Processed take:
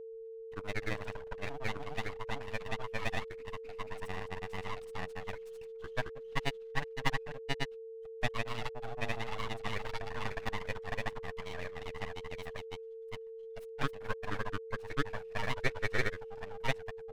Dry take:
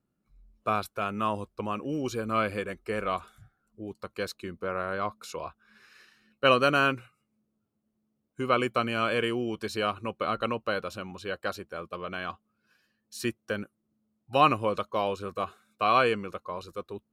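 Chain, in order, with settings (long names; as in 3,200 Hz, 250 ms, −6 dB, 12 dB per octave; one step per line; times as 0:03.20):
three-way crossover with the lows and the highs turned down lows −14 dB, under 340 Hz, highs −14 dB, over 2,400 Hz
full-wave rectification
granular cloud 68 ms, grains 27 per second, spray 772 ms
steady tone 450 Hz −41 dBFS
level −2.5 dB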